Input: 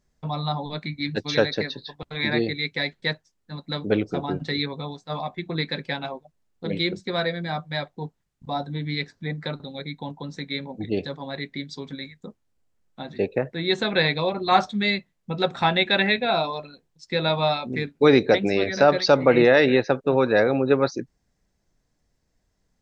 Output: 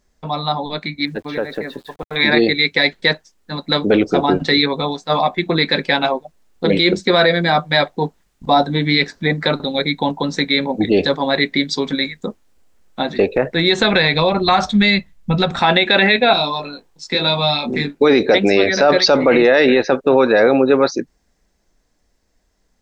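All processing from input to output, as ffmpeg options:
ffmpeg -i in.wav -filter_complex "[0:a]asettb=1/sr,asplit=3[link_01][link_02][link_03];[link_01]atrim=end=1.054[link_04];[link_02]atrim=start=1.05:end=2.16,asetpts=PTS-STARTPTS,afade=type=in:duration=0.004:curve=qsin,afade=type=out:start_time=1.106:duration=0.004:curve=qsin,lowpass=1600,acompressor=threshold=-30dB:ratio=2.5:attack=3.2:release=140:knee=1:detection=peak,aeval=exprs='val(0)*gte(abs(val(0)),0.00188)':channel_layout=same[link_05];[link_03]atrim=start=2.156[link_06];[link_04][link_05]acrossfade=duration=0.004:curve1=hsin:curve2=qsin[link_07];[link_07][link_06]acrossfade=duration=0.004:curve1=qsin:curve2=hsin,asettb=1/sr,asplit=3[link_08][link_09][link_10];[link_08]atrim=end=13.084[link_11];[link_09]atrim=start=13.08:end=15.59,asetpts=PTS-STARTPTS,afade=type=in:duration=0.004:curve=qsin,afade=type=out:start_time=2.506:duration=0.004:curve=qsin,acompressor=threshold=-22dB:ratio=6:attack=3.2:release=140:knee=1:detection=peak,asubboost=boost=10:cutoff=140[link_12];[link_10]atrim=start=15.586[link_13];[link_11][link_12]acrossfade=duration=0.004:curve1=hsin:curve2=qsin[link_14];[link_14][link_13]acrossfade=duration=0.004:curve1=qsin:curve2=hsin,asettb=1/sr,asplit=3[link_15][link_16][link_17];[link_15]atrim=end=16.334[link_18];[link_16]atrim=start=16.33:end=17.95,asetpts=PTS-STARTPTS,afade=type=in:duration=0.004:curve=qsin,afade=type=out:start_time=1.616:duration=0.004:curve=qsin,equalizer=frequency=930:width_type=o:width=1:gain=6,acrossover=split=270|3000[link_19][link_20][link_21];[link_20]acompressor=threshold=-34dB:ratio=6:attack=3.2:release=140:knee=2.83:detection=peak[link_22];[link_19][link_22][link_21]amix=inputs=3:normalize=0,asplit=2[link_23][link_24];[link_24]adelay=21,volume=-3dB[link_25];[link_23][link_25]amix=inputs=2:normalize=0,atrim=end_sample=71442[link_26];[link_17]atrim=start=17.946[link_27];[link_18][link_26]acrossfade=duration=0.004:curve1=hsin:curve2=qsin[link_28];[link_28][link_27]acrossfade=duration=0.004:curve1=qsin:curve2=hsin,dynaudnorm=framelen=140:gausssize=31:maxgain=9dB,alimiter=limit=-11dB:level=0:latency=1:release=14,equalizer=frequency=120:width=1.6:gain=-13,volume=8.5dB" out.wav

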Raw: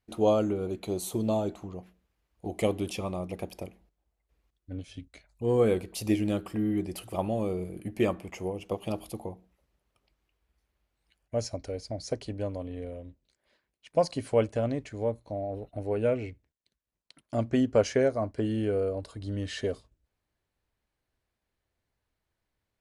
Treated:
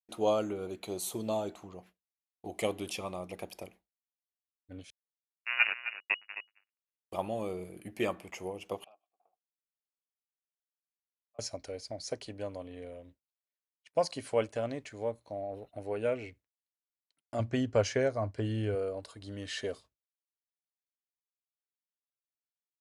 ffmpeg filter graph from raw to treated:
ffmpeg -i in.wav -filter_complex "[0:a]asettb=1/sr,asplit=3[link_01][link_02][link_03];[link_01]atrim=end=4.904[link_04];[link_02]atrim=start=4.9:end=7.12,asetpts=PTS-STARTPTS,afade=type=in:duration=0.004:curve=qsin,afade=type=out:start_time=2.216:duration=0.004:curve=qsin,acrusher=bits=2:mix=0:aa=0.5,aecho=1:1:262:0.266,atrim=end_sample=97902,lowpass=frequency=2500:width_type=q:width=0.5098,lowpass=frequency=2500:width_type=q:width=0.6013,lowpass=frequency=2500:width_type=q:width=0.9,lowpass=frequency=2500:width_type=q:width=2.563,afreqshift=-2900[link_05];[link_03]atrim=start=7.116[link_06];[link_04][link_05]acrossfade=duration=0.004:curve1=hsin:curve2=qsin[link_07];[link_07][link_06]acrossfade=duration=0.004:curve1=qsin:curve2=hsin,asettb=1/sr,asplit=3[link_08][link_09][link_10];[link_08]atrim=end=8.844[link_11];[link_09]atrim=start=8.84:end=11.39,asetpts=PTS-STARTPTS,afade=type=in:duration=0.004:curve=qsin,afade=type=out:start_time=2.546:duration=0.004:curve=qsin,aeval=exprs='if(lt(val(0),0),0.251*val(0),val(0))':channel_layout=same,acompressor=threshold=-40dB:ratio=5:attack=3.2:release=140:knee=1:detection=peak,asplit=3[link_12][link_13][link_14];[link_12]bandpass=frequency=730:width_type=q:width=8,volume=0dB[link_15];[link_13]bandpass=frequency=1090:width_type=q:width=8,volume=-6dB[link_16];[link_14]bandpass=frequency=2440:width_type=q:width=8,volume=-9dB[link_17];[link_15][link_16][link_17]amix=inputs=3:normalize=0[link_18];[link_10]atrim=start=11.386[link_19];[link_11][link_18]acrossfade=duration=0.004:curve1=hsin:curve2=qsin[link_20];[link_20][link_19]acrossfade=duration=0.004:curve1=qsin:curve2=hsin,asettb=1/sr,asplit=3[link_21][link_22][link_23];[link_21]atrim=end=17.394[link_24];[link_22]atrim=start=17.39:end=18.75,asetpts=PTS-STARTPTS,afade=type=in:duration=0.004:curve=qsin,afade=type=out:start_time=1.356:duration=0.004:curve=qsin,lowpass=8700,equalizer=frequency=100:width_type=o:width=0.99:gain=12.5,bandreject=frequency=1300:width=28[link_25];[link_23]atrim=start=18.746[link_26];[link_24][link_25]acrossfade=duration=0.004:curve1=hsin:curve2=qsin[link_27];[link_27][link_26]acrossfade=duration=0.004:curve1=qsin:curve2=hsin,highpass=65,agate=range=-33dB:threshold=-46dB:ratio=3:detection=peak,lowshelf=frequency=440:gain=-11" out.wav

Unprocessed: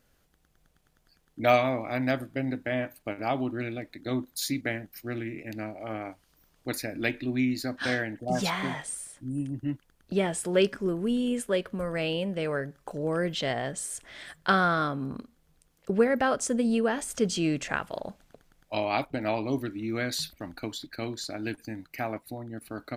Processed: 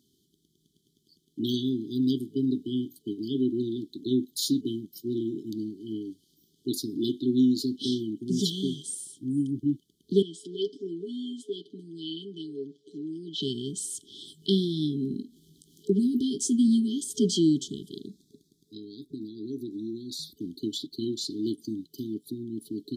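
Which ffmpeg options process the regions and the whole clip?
ffmpeg -i in.wav -filter_complex "[0:a]asettb=1/sr,asplit=3[link_01][link_02][link_03];[link_01]atrim=end=10.224[link_04];[link_02]atrim=start=10.22:end=13.42,asetpts=PTS-STARTPTS,afade=type=in:duration=0.004:curve=qsin,afade=type=out:start_time=3.196:duration=0.004:curve=qsin,acompressor=threshold=-42dB:ratio=1.5:attack=3.2:release=140:knee=1:detection=peak,highpass=330,lowpass=4700,aecho=1:1:6.9:0.69,atrim=end_sample=141120[link_05];[link_03]atrim=start=13.416[link_06];[link_04][link_05]acrossfade=duration=0.004:curve1=hsin:curve2=qsin[link_07];[link_07][link_06]acrossfade=duration=0.004:curve1=qsin:curve2=hsin,asettb=1/sr,asplit=3[link_08][link_09][link_10];[link_08]atrim=end=14.234[link_11];[link_09]atrim=start=14.23:end=16.68,asetpts=PTS-STARTPTS,afade=type=in:duration=0.004:curve=qsin,afade=type=out:start_time=2.446:duration=0.004:curve=qsin,asplit=2[link_12][link_13];[link_13]adelay=20,volume=-9.5dB[link_14];[link_12][link_14]amix=inputs=2:normalize=0,atrim=end_sample=108045,acompressor=mode=upward:threshold=-45dB:ratio=2.5:attack=3.2:release=140:knee=2.83:detection=peak[link_15];[link_10]atrim=start=16.676[link_16];[link_11][link_15]acrossfade=duration=0.004:curve1=hsin:curve2=qsin[link_17];[link_17][link_16]acrossfade=duration=0.004:curve1=qsin:curve2=hsin,asettb=1/sr,asplit=3[link_18][link_19][link_20];[link_18]atrim=end=18.064[link_21];[link_19]atrim=start=18.06:end=20.37,asetpts=PTS-STARTPTS,afade=type=in:duration=0.004:curve=qsin,afade=type=out:start_time=2.306:duration=0.004:curve=qsin,acompressor=threshold=-39dB:ratio=3:attack=3.2:release=140:knee=1:detection=peak,asuperstop=centerf=2700:order=8:qfactor=1.9[link_22];[link_20]atrim=start=20.366[link_23];[link_21][link_22]acrossfade=duration=0.004:curve1=hsin:curve2=qsin[link_24];[link_24][link_23]acrossfade=duration=0.004:curve1=qsin:curve2=hsin,highpass=190,highshelf=frequency=6200:gain=-8.5,afftfilt=real='re*(1-between(b*sr/4096,420,3000))':imag='im*(1-between(b*sr/4096,420,3000))':win_size=4096:overlap=0.75,volume=6.5dB" out.wav

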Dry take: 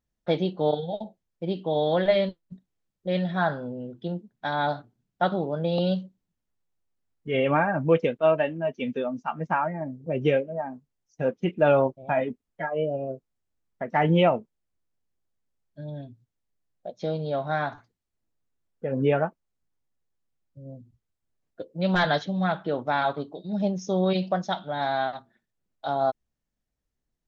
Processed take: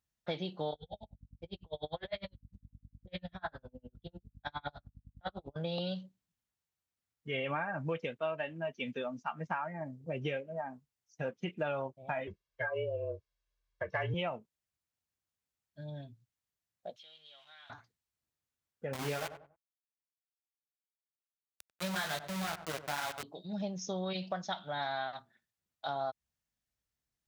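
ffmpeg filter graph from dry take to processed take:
ffmpeg -i in.wav -filter_complex "[0:a]asettb=1/sr,asplit=3[link_01][link_02][link_03];[link_01]atrim=end=0.734[link_04];[link_02]atrim=start=0.73:end=5.56,asetpts=PTS-STARTPTS,afade=type=in:duration=0.004:curve=qsin,afade=type=out:start_time=4.826:duration=0.004:curve=qsin,flanger=delay=19.5:depth=6.8:speed=1.3,aeval=exprs='val(0)+0.01*(sin(2*PI*50*n/s)+sin(2*PI*2*50*n/s)/2+sin(2*PI*3*50*n/s)/3+sin(2*PI*4*50*n/s)/4+sin(2*PI*5*50*n/s)/5)':channel_layout=same,aeval=exprs='val(0)*pow(10,-39*(0.5-0.5*cos(2*PI*9.9*n/s))/20)':channel_layout=same[link_05];[link_03]atrim=start=5.556[link_06];[link_04][link_05]acrossfade=duration=0.004:curve1=hsin:curve2=qsin[link_07];[link_07][link_06]acrossfade=duration=0.004:curve1=qsin:curve2=hsin,asettb=1/sr,asplit=3[link_08][link_09][link_10];[link_08]atrim=end=12.274[link_11];[link_09]atrim=start=12.27:end=14.14,asetpts=PTS-STARTPTS,afade=type=in:duration=0.004:curve=qsin,afade=type=out:start_time=1.866:duration=0.004:curve=qsin,lowpass=frequency=5900:width=0.5412,lowpass=frequency=5900:width=1.3066,aecho=1:1:1.8:0.9,atrim=end_sample=82467,afreqshift=-40[link_12];[link_10]atrim=start=14.136[link_13];[link_11][link_12]acrossfade=duration=0.004:curve1=hsin:curve2=qsin[link_14];[link_14][link_13]acrossfade=duration=0.004:curve1=qsin:curve2=hsin,asettb=1/sr,asplit=3[link_15][link_16][link_17];[link_15]atrim=end=16.964[link_18];[link_16]atrim=start=16.96:end=17.7,asetpts=PTS-STARTPTS,afade=type=in:duration=0.004:curve=qsin,afade=type=out:start_time=0.736:duration=0.004:curve=qsin,aeval=exprs='val(0)+0.5*0.00708*sgn(val(0))':channel_layout=same,bandpass=frequency=3100:width_type=q:width=5.8,acompressor=threshold=-51dB:ratio=3:attack=3.2:release=140:knee=1:detection=peak[link_19];[link_17]atrim=start=17.696[link_20];[link_18][link_19]acrossfade=duration=0.004:curve1=hsin:curve2=qsin[link_21];[link_21][link_20]acrossfade=duration=0.004:curve1=qsin:curve2=hsin,asettb=1/sr,asplit=3[link_22][link_23][link_24];[link_22]atrim=end=18.934[link_25];[link_23]atrim=start=18.93:end=23.23,asetpts=PTS-STARTPTS,afade=type=in:duration=0.004:curve=qsin,afade=type=out:start_time=4.296:duration=0.004:curve=qsin,flanger=delay=18:depth=3.4:speed=1.9,aeval=exprs='val(0)*gte(abs(val(0)),0.0398)':channel_layout=same,asplit=2[link_26][link_27];[link_27]adelay=94,lowpass=frequency=1100:poles=1,volume=-11.5dB,asplit=2[link_28][link_29];[link_29]adelay=94,lowpass=frequency=1100:poles=1,volume=0.32,asplit=2[link_30][link_31];[link_31]adelay=94,lowpass=frequency=1100:poles=1,volume=0.32[link_32];[link_26][link_28][link_30][link_32]amix=inputs=4:normalize=0,atrim=end_sample=189630[link_33];[link_24]atrim=start=23.226[link_34];[link_25][link_33]acrossfade=duration=0.004:curve1=hsin:curve2=qsin[link_35];[link_35][link_34]acrossfade=duration=0.004:curve1=qsin:curve2=hsin,highpass=75,equalizer=frequency=310:width=0.44:gain=-10.5,acompressor=threshold=-33dB:ratio=4" out.wav

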